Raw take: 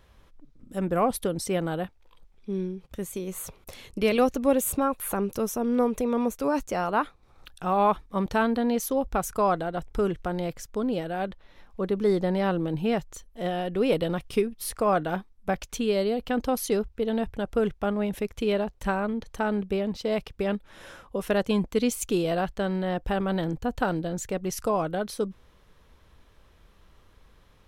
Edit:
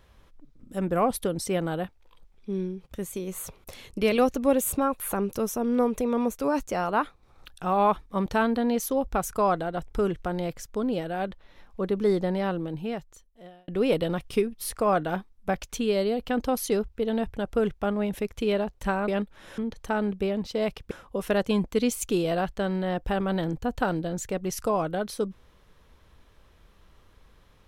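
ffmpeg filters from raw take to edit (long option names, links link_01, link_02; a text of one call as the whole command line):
ffmpeg -i in.wav -filter_complex "[0:a]asplit=5[link_01][link_02][link_03][link_04][link_05];[link_01]atrim=end=13.68,asetpts=PTS-STARTPTS,afade=type=out:start_time=12.07:duration=1.61[link_06];[link_02]atrim=start=13.68:end=19.082,asetpts=PTS-STARTPTS,afade=type=in:duration=0.004:curve=hsin[link_07];[link_03]atrim=start=20.408:end=20.912[link_08];[link_04]atrim=start=19.078:end=20.412[link_09];[link_05]atrim=start=20.908[link_10];[link_06][link_07]concat=n=2:v=0:a=1[link_11];[link_11][link_08]acrossfade=duration=0.004:curve1=hsin:curve2=hsin[link_12];[link_12][link_09]acrossfade=duration=0.004:curve1=hsin:curve2=hsin[link_13];[link_13][link_10]acrossfade=duration=0.004:curve1=hsin:curve2=hsin" out.wav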